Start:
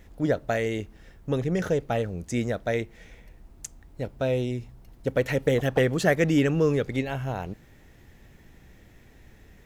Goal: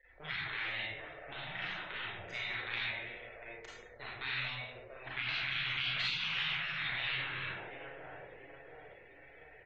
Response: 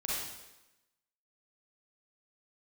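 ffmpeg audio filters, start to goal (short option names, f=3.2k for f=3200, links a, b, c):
-filter_complex "[0:a]aeval=exprs='if(lt(val(0),0),0.251*val(0),val(0))':c=same,acrossover=split=390 3500:gain=0.0891 1 0.0708[a][b][c];[a][b][c]amix=inputs=3:normalize=0,asettb=1/sr,asplit=3[d][e][f];[d]atrim=end=0.434[g];[e]atrim=start=0.43:end=2.74,asetpts=PTS-STARTPTS,afade=t=in:d=0.004:c=qsin,afade=t=out:st=2.306:d=0.004:c=qsin,acompressor=threshold=-34dB:ratio=6[h];[f]atrim=start=2.736[i];[g][h]acrossfade=d=0.004:c1=hsin:c2=qsin[j];[j][i]acrossfade=d=0.004:c1=qsin:c2=hsin,asplit=2[k][l];[l]adelay=689,lowpass=f=1.3k:p=1,volume=-13dB,asplit=2[m][n];[n]adelay=689,lowpass=f=1.3k:p=1,volume=0.54,asplit=2[o][p];[p]adelay=689,lowpass=f=1.3k:p=1,volume=0.54,asplit=2[q][r];[r]adelay=689,lowpass=f=1.3k:p=1,volume=0.54,asplit=2[s][t];[t]adelay=689,lowpass=f=1.3k:p=1,volume=0.54,asplit=2[u][v];[v]adelay=689,lowpass=f=1.3k:p=1,volume=0.54[w];[k][m][o][q][s][u][w]amix=inputs=7:normalize=0[x];[1:a]atrim=start_sample=2205,asetrate=52920,aresample=44100[y];[x][y]afir=irnorm=-1:irlink=0,afftfilt=real='re*lt(hypot(re,im),0.0398)':imag='im*lt(hypot(re,im),0.0398)':win_size=1024:overlap=0.75,afftdn=nr=23:nf=-65,equalizer=f=125:t=o:w=1:g=5,equalizer=f=250:t=o:w=1:g=-11,equalizer=f=1k:t=o:w=1:g=-7,equalizer=f=2k:t=o:w=1:g=5,equalizer=f=4k:t=o:w=1:g=12,equalizer=f=8k:t=o:w=1:g=-9,volume=1.5dB"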